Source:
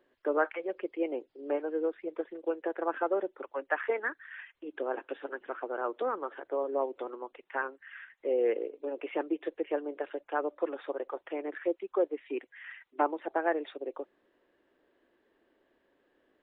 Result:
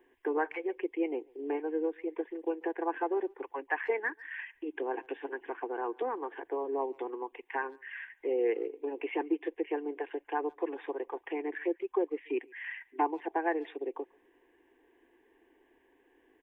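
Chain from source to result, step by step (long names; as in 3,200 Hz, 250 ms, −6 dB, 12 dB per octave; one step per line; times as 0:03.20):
in parallel at +1.5 dB: downward compressor, threshold −41 dBFS, peak gain reduction 18 dB
on the sum: phaser with its sweep stopped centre 880 Hz, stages 8
far-end echo of a speakerphone 140 ms, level −26 dB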